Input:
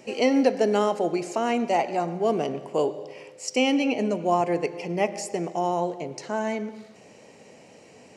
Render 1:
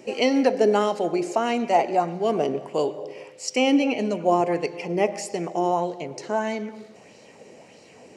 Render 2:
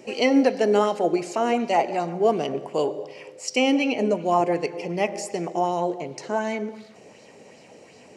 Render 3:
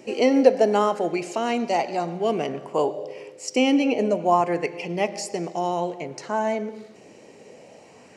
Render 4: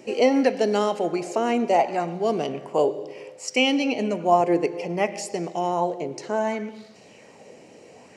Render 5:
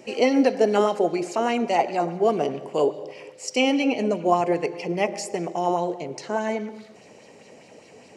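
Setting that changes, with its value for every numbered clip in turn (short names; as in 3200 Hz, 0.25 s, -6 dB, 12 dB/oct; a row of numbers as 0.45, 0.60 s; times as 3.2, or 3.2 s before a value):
LFO bell, rate: 1.6, 2.7, 0.28, 0.65, 4.9 Hz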